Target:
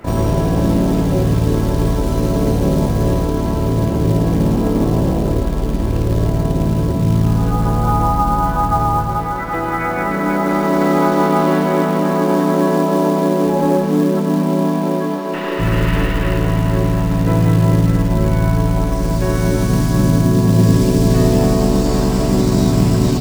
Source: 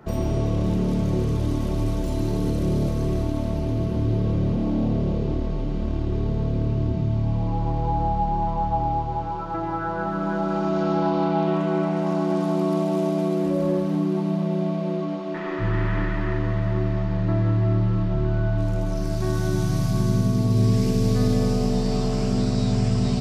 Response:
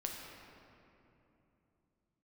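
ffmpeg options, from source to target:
-filter_complex "[0:a]asplit=3[a][b][c];[b]asetrate=52444,aresample=44100,atempo=0.840896,volume=-14dB[d];[c]asetrate=66075,aresample=44100,atempo=0.66742,volume=-2dB[e];[a][d][e]amix=inputs=3:normalize=0,acrusher=bits=6:mode=log:mix=0:aa=0.000001,volume=5.5dB"

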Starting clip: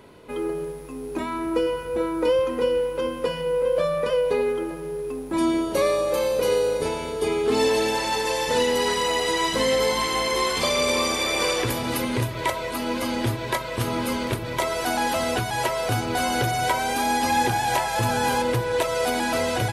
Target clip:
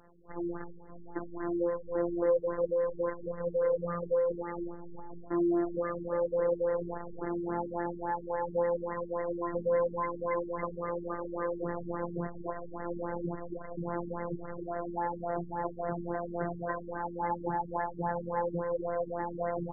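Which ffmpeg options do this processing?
-af "acrusher=bits=5:dc=4:mix=0:aa=0.000001,afftfilt=real='hypot(re,im)*cos(PI*b)':imag='0':win_size=1024:overlap=0.75,afftfilt=real='re*lt(b*sr/1024,410*pow(2100/410,0.5+0.5*sin(2*PI*3.6*pts/sr)))':imag='im*lt(b*sr/1024,410*pow(2100/410,0.5+0.5*sin(2*PI*3.6*pts/sr)))':win_size=1024:overlap=0.75,volume=-4.5dB"

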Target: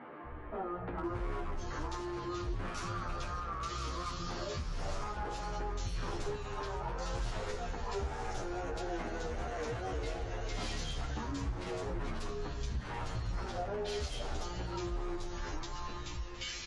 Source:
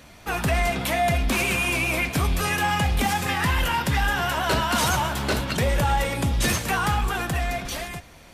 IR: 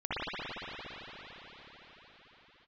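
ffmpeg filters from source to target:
-filter_complex "[0:a]lowshelf=f=140:g=7.5,acrossover=split=360|4100[a][b][c];[a]adelay=120[d];[c]adelay=520[e];[d][b][e]amix=inputs=3:normalize=0,asplit=2[f][g];[1:a]atrim=start_sample=2205,afade=t=out:st=0.26:d=0.01,atrim=end_sample=11907,adelay=114[h];[g][h]afir=irnorm=-1:irlink=0,volume=-19.5dB[i];[f][i]amix=inputs=2:normalize=0,aeval=exprs='0.168*(abs(mod(val(0)/0.168+3,4)-2)-1)':c=same,asetrate=22050,aresample=44100,asplit=2[j][k];[k]adelay=17,volume=-6.5dB[l];[j][l]amix=inputs=2:normalize=0,asplit=2[m][n];[n]alimiter=limit=-22.5dB:level=0:latency=1,volume=0dB[o];[m][o]amix=inputs=2:normalize=0,acompressor=threshold=-38dB:ratio=3,asplit=2[p][q];[q]adelay=9.6,afreqshift=-0.65[r];[p][r]amix=inputs=2:normalize=1"

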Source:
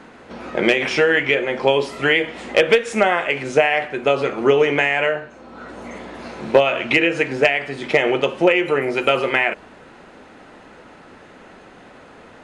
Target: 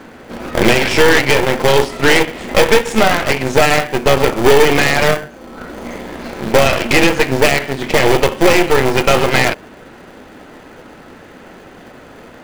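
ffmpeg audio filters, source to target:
-filter_complex "[0:a]apsyclip=10dB,bandreject=f=50:t=h:w=6,bandreject=f=100:t=h:w=6,bandreject=f=150:t=h:w=6,bandreject=f=200:t=h:w=6,asplit=2[a][b];[b]acrusher=samples=33:mix=1:aa=0.000001,volume=-5.5dB[c];[a][c]amix=inputs=2:normalize=0,aeval=exprs='1.78*(cos(1*acos(clip(val(0)/1.78,-1,1)))-cos(1*PI/2))+0.398*(cos(6*acos(clip(val(0)/1.78,-1,1)))-cos(6*PI/2))':c=same,volume=-6dB"

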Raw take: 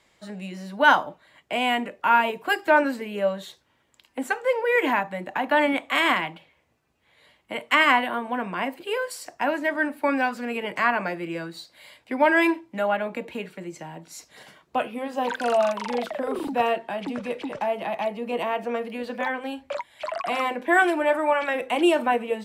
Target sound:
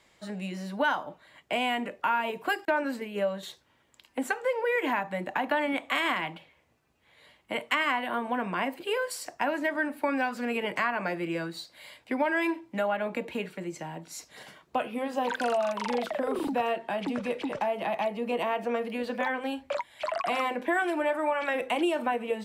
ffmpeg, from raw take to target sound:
-filter_complex "[0:a]asettb=1/sr,asplit=3[a][b][c];[a]atrim=end=2.654[d];[b]atrim=start=2.65:end=3.43,asetpts=PTS-STARTPTS,afade=t=in:d=0.004:c=qsin,afade=t=out:st=0.776:d=0.004:c=qsin,agate=range=-33dB:threshold=-28dB:ratio=3:detection=peak[e];[c]atrim=start=3.426[f];[d][e]acrossfade=d=0.004:c1=hsin:c2=qsin[g];[g][f]acrossfade=d=0.004:c1=qsin:c2=hsin,acompressor=threshold=-25dB:ratio=4"

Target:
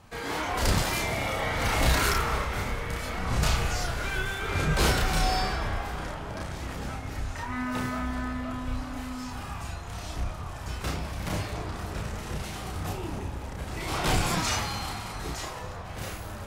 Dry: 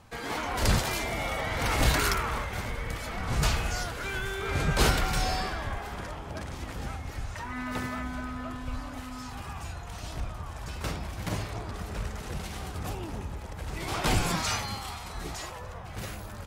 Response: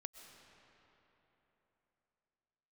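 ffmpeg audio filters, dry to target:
-filter_complex "[0:a]asoftclip=type=tanh:threshold=-17.5dB,asplit=2[a][b];[1:a]atrim=start_sample=2205,adelay=32[c];[b][c]afir=irnorm=-1:irlink=0,volume=3.5dB[d];[a][d]amix=inputs=2:normalize=0"

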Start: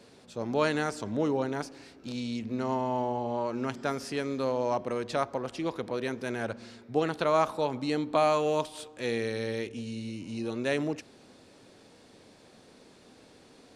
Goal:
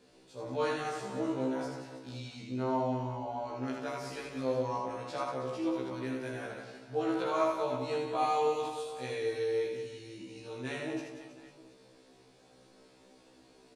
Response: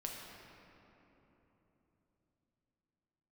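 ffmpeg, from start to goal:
-filter_complex "[0:a]aecho=1:1:80|184|319.2|495|723.4:0.631|0.398|0.251|0.158|0.1[a];[1:a]atrim=start_sample=2205,afade=t=out:st=0.13:d=0.01,atrim=end_sample=6174[b];[a][b]afir=irnorm=-1:irlink=0,afftfilt=real='re*1.73*eq(mod(b,3),0)':imag='im*1.73*eq(mod(b,3),0)':win_size=2048:overlap=0.75,volume=-2dB"

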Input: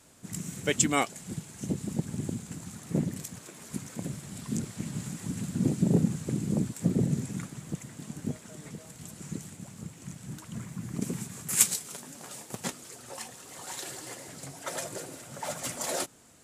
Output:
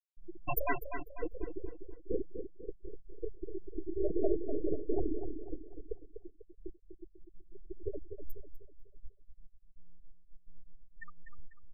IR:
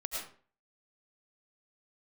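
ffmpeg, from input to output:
-filter_complex "[0:a]asplit=2[a][b];[b]acompressor=threshold=-36dB:ratio=20,volume=-2dB[c];[a][c]amix=inputs=2:normalize=0,aeval=exprs='abs(val(0))':c=same,bandreject=f=50:t=h:w=6,bandreject=f=100:t=h:w=6,bandreject=f=150:t=h:w=6,bandreject=f=200:t=h:w=6,bandreject=f=250:t=h:w=6,bandreject=f=300:t=h:w=6,flanger=delay=20:depth=5.6:speed=0.34,asoftclip=type=tanh:threshold=-19.5dB,lowshelf=f=110:g=-10.5,acrusher=bits=8:mix=0:aa=0.000001,atempo=1.4,equalizer=f=11k:t=o:w=2:g=4,afftfilt=real='re*gte(hypot(re,im),0.0631)':imag='im*gte(hypot(re,im),0.0631)':win_size=1024:overlap=0.75,bandreject=f=530:w=12,asplit=2[d][e];[e]adelay=247,lowpass=f=4.4k:p=1,volume=-8dB,asplit=2[f][g];[g]adelay=247,lowpass=f=4.4k:p=1,volume=0.43,asplit=2[h][i];[i]adelay=247,lowpass=f=4.4k:p=1,volume=0.43,asplit=2[j][k];[k]adelay=247,lowpass=f=4.4k:p=1,volume=0.43,asplit=2[l][m];[m]adelay=247,lowpass=f=4.4k:p=1,volume=0.43[n];[f][h][j][l][n]amix=inputs=5:normalize=0[o];[d][o]amix=inputs=2:normalize=0,volume=8dB"

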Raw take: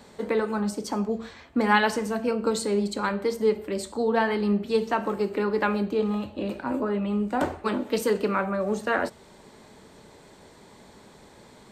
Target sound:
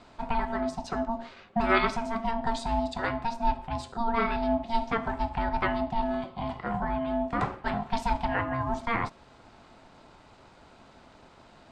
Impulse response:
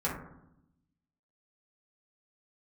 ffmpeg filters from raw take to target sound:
-af "aeval=exprs='val(0)*sin(2*PI*460*n/s)':c=same,lowpass=4.9k"

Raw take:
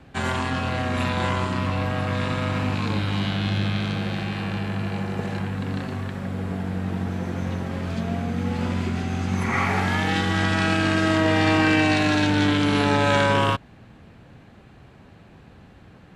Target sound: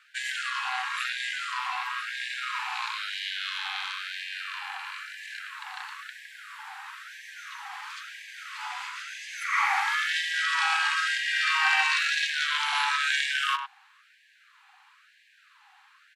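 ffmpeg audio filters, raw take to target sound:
-filter_complex "[0:a]lowshelf=f=110:g=11,asplit=2[a][b];[b]adelay=100,highpass=300,lowpass=3.4k,asoftclip=type=hard:threshold=-15.5dB,volume=-10dB[c];[a][c]amix=inputs=2:normalize=0,afftfilt=real='re*gte(b*sr/1024,730*pow(1600/730,0.5+0.5*sin(2*PI*1*pts/sr)))':imag='im*gte(b*sr/1024,730*pow(1600/730,0.5+0.5*sin(2*PI*1*pts/sr)))':win_size=1024:overlap=0.75"

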